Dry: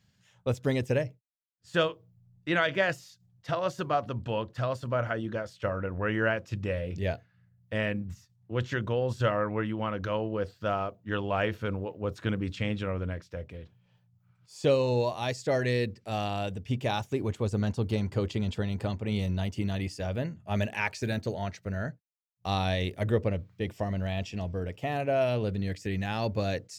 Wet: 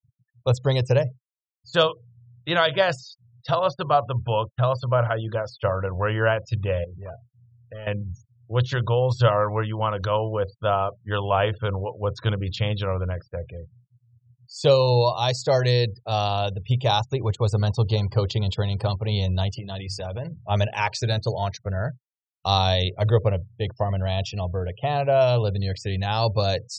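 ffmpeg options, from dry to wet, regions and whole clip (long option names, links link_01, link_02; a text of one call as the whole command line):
ffmpeg -i in.wav -filter_complex "[0:a]asettb=1/sr,asplit=3[link_01][link_02][link_03];[link_01]atrim=end=3.594[link_04];[link_02]atrim=start=3.59:end=4.78,asetpts=PTS-STARTPTS,afade=type=in:duration=0.004:curve=qsin,afade=type=out:start_time=1.186:duration=0.004:curve=qsin,lowpass=4700,agate=range=-33dB:threshold=-40dB:ratio=3:release=100:detection=peak[link_05];[link_03]atrim=start=4.776[link_06];[link_04][link_05]acrossfade=duration=0.004:curve1=hsin:curve2=qsin[link_07];[link_07][link_06]acrossfade=duration=0.004:curve1=qsin:curve2=hsin,asettb=1/sr,asplit=3[link_08][link_09][link_10];[link_08]atrim=end=6.844[link_11];[link_09]atrim=start=6.84:end=7.87,asetpts=PTS-STARTPTS,afade=type=in:duration=0.004:curve=qsin,afade=type=out:start_time=1.026:duration=0.004:curve=qsin,asoftclip=type=hard:threshold=-27dB,acompressor=threshold=-47dB:ratio=2.5:attack=3.2:release=140:knee=1:detection=peak[link_12];[link_10]atrim=start=7.866[link_13];[link_11][link_12]acrossfade=duration=0.004:curve1=hsin:curve2=qsin[link_14];[link_14][link_13]acrossfade=duration=0.004:curve1=qsin:curve2=hsin,asettb=1/sr,asplit=3[link_15][link_16][link_17];[link_15]atrim=end=19.564[link_18];[link_16]atrim=start=19.56:end=20.36,asetpts=PTS-STARTPTS,afade=type=in:duration=0.004:curve=qsin,afade=type=out:start_time=0.796:duration=0.004:curve=qsin,highpass=55,bandreject=frequency=50:width_type=h:width=6,bandreject=frequency=100:width_type=h:width=6,bandreject=frequency=150:width_type=h:width=6,acompressor=threshold=-33dB:ratio=8:attack=3.2:release=140:knee=1:detection=peak[link_19];[link_17]atrim=start=20.356[link_20];[link_18][link_19]acrossfade=duration=0.004:curve1=hsin:curve2=qsin[link_21];[link_21][link_20]acrossfade=duration=0.004:curve1=qsin:curve2=hsin,afftfilt=real='re*gte(hypot(re,im),0.00447)':imag='im*gte(hypot(re,im),0.00447)':win_size=1024:overlap=0.75,equalizer=frequency=125:width_type=o:width=1:gain=9,equalizer=frequency=250:width_type=o:width=1:gain=-12,equalizer=frequency=500:width_type=o:width=1:gain=4,equalizer=frequency=1000:width_type=o:width=1:gain=8,equalizer=frequency=2000:width_type=o:width=1:gain=-7,equalizer=frequency=4000:width_type=o:width=1:gain=11,equalizer=frequency=8000:width_type=o:width=1:gain=3,volume=3.5dB" out.wav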